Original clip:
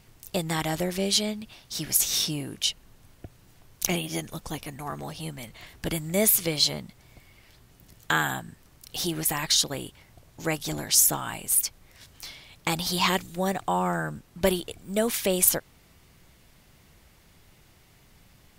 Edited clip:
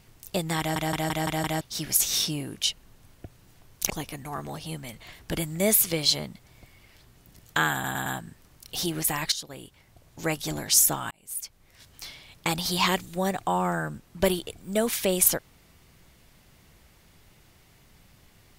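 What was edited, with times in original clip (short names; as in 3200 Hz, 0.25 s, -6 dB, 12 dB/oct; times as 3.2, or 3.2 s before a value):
0.59 stutter in place 0.17 s, 6 plays
3.9–4.44 cut
8.27 stutter 0.11 s, 4 plays
9.53–10.45 fade in, from -15.5 dB
11.32–12.25 fade in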